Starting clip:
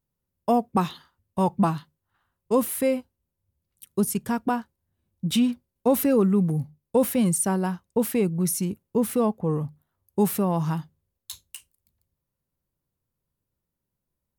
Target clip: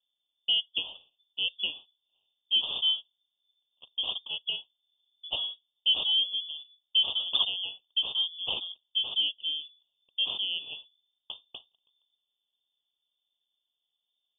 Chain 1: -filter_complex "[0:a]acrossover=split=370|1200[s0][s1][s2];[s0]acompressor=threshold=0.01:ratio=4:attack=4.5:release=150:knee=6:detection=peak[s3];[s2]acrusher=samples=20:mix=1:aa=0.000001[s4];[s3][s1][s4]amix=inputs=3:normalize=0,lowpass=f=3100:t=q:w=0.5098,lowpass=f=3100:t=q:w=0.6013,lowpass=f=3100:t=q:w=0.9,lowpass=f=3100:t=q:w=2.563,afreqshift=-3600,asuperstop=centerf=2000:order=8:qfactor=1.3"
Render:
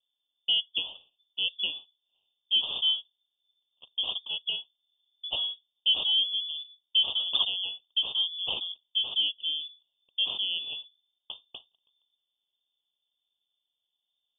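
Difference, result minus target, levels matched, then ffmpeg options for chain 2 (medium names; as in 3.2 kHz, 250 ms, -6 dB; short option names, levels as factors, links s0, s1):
compression: peak gain reduction -8 dB
-filter_complex "[0:a]acrossover=split=370|1200[s0][s1][s2];[s0]acompressor=threshold=0.00282:ratio=4:attack=4.5:release=150:knee=6:detection=peak[s3];[s2]acrusher=samples=20:mix=1:aa=0.000001[s4];[s3][s1][s4]amix=inputs=3:normalize=0,lowpass=f=3100:t=q:w=0.5098,lowpass=f=3100:t=q:w=0.6013,lowpass=f=3100:t=q:w=0.9,lowpass=f=3100:t=q:w=2.563,afreqshift=-3600,asuperstop=centerf=2000:order=8:qfactor=1.3"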